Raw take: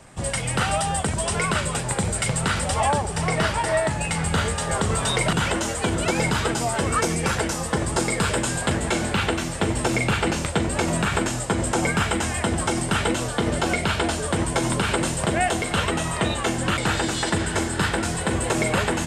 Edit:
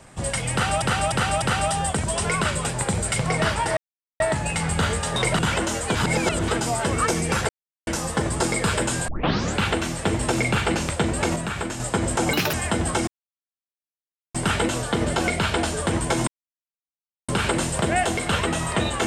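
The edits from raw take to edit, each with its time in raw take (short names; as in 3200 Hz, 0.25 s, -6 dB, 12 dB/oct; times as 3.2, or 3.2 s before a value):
0.52–0.82 loop, 4 plays
2.36–3.24 cut
3.75 insert silence 0.43 s
4.71–5.1 cut
5.89–6.42 reverse
7.43 insert silence 0.38 s
8.64 tape start 0.48 s
10.92–11.36 gain -5.5 dB
11.89–12.26 speed 181%
12.8 insert silence 1.27 s
14.73 insert silence 1.01 s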